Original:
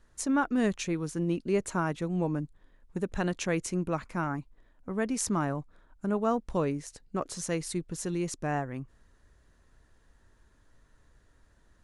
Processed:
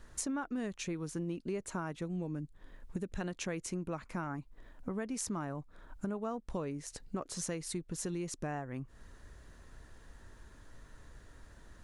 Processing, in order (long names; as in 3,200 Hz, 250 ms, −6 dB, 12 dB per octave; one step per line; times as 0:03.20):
0:02.05–0:03.21: dynamic equaliser 910 Hz, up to −8 dB, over −48 dBFS, Q 0.92
downward compressor 5 to 1, threshold −45 dBFS, peak gain reduction 20 dB
level +8 dB